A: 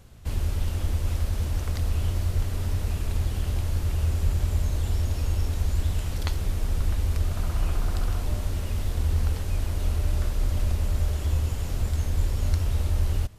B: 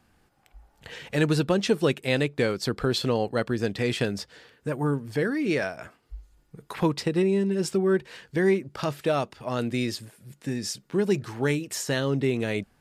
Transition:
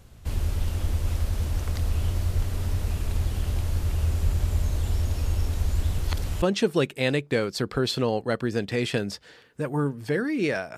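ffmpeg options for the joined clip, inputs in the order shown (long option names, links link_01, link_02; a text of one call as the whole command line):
ffmpeg -i cue0.wav -i cue1.wav -filter_complex "[0:a]apad=whole_dur=10.77,atrim=end=10.77,asplit=2[link_01][link_02];[link_01]atrim=end=5.982[link_03];[link_02]atrim=start=5.978:end=6.422,asetpts=PTS-STARTPTS,areverse[link_04];[1:a]atrim=start=1.488:end=5.84[link_05];[link_03][link_04]acrossfade=duration=0.004:curve1=hsin:curve2=hsin[link_06];[link_06][link_05]acrossfade=duration=0.004:curve1=hsin:curve2=hsin" out.wav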